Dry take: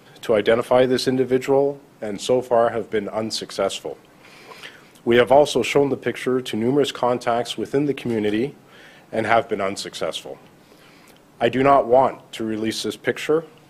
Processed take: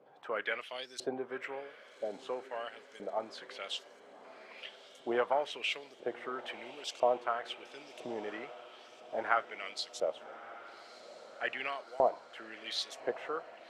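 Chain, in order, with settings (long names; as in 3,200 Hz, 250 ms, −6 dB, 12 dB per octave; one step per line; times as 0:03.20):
auto-filter band-pass saw up 1 Hz 540–7,000 Hz
feedback delay with all-pass diffusion 1,208 ms, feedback 61%, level −16 dB
level −5.5 dB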